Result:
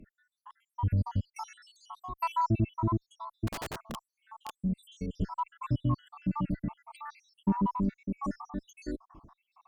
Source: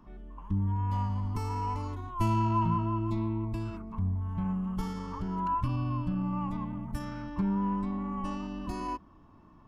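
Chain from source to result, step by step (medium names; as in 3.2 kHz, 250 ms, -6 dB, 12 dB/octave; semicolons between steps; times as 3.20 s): random holes in the spectrogram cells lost 81%; 3.47–4.62 s: integer overflow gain 37.5 dB; Chebyshev shaper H 6 -39 dB, 8 -39 dB, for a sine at -22 dBFS; trim +5.5 dB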